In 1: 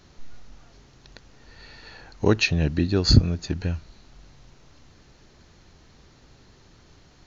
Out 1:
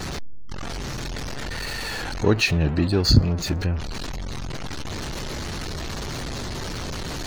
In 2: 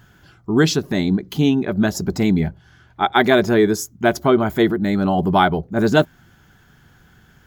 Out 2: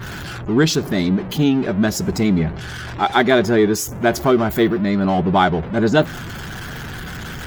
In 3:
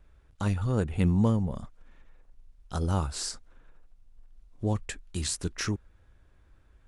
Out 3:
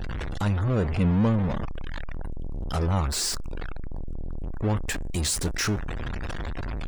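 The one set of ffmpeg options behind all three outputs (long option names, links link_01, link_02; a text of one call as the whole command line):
ffmpeg -i in.wav -af "aeval=exprs='val(0)+0.5*0.0708*sgn(val(0))':channel_layout=same,afftdn=noise_reduction=29:noise_floor=-40,volume=-1dB" out.wav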